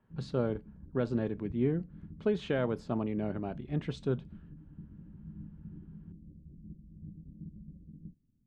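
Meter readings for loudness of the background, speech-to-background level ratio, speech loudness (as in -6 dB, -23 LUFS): -50.0 LUFS, 16.0 dB, -34.0 LUFS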